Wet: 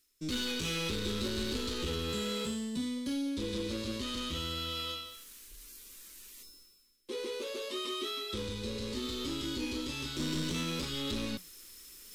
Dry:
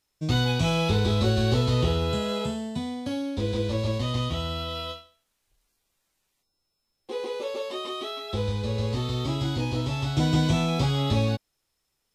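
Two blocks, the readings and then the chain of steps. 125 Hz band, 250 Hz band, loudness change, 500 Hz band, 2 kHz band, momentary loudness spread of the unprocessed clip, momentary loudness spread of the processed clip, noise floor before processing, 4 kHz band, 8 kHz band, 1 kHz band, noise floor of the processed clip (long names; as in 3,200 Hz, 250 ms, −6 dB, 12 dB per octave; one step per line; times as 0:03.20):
−18.0 dB, −7.5 dB, −9.0 dB, −9.5 dB, −6.0 dB, 9 LU, 15 LU, −78 dBFS, −3.5 dB, 0.0 dB, −11.5 dB, −61 dBFS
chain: high-shelf EQ 7,200 Hz +9.5 dB
reversed playback
upward compression, threshold −31 dBFS
reversed playback
soft clipping −24.5 dBFS, distortion −10 dB
phaser with its sweep stopped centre 300 Hz, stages 4
flanger 0.64 Hz, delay 0.3 ms, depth 8.6 ms, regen +88%
in parallel at −6 dB: hard clipping −35 dBFS, distortion −14 dB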